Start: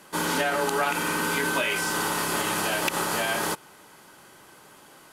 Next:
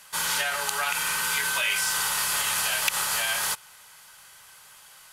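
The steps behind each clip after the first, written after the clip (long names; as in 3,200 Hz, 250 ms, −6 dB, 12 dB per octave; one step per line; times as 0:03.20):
guitar amp tone stack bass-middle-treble 10-0-10
level +5.5 dB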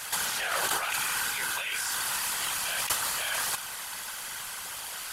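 compressor whose output falls as the input rises −35 dBFS, ratio −1
random phases in short frames
level +4.5 dB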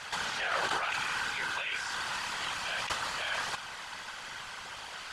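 high-frequency loss of the air 130 metres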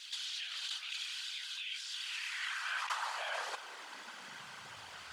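bit reduction 11 bits
high-pass filter sweep 3,500 Hz → 73 Hz, 0:01.89–0:05.08
pitch vibrato 9 Hz 38 cents
level −7 dB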